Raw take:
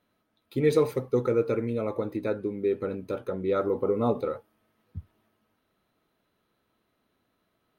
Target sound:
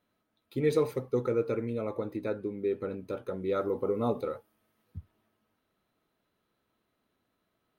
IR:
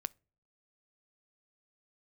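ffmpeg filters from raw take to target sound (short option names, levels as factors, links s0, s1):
-filter_complex "[0:a]asettb=1/sr,asplit=3[s0][s1][s2];[s0]atrim=end=3.284[s3];[s1]atrim=start=3.28:end=4.98,asetpts=PTS-STARTPTS,afade=t=in:d=0.004:c=qsin,afade=t=out:st=1.696:d=0.004:c=qsin,highshelf=f=5200:g=7[s4];[s2]atrim=start=4.976[s5];[s3][s4]acrossfade=d=0.004:c1=hsin:c2=qsin[s6];[s6][s5]acrossfade=d=0.004:c1=qsin:c2=hsin,volume=0.631"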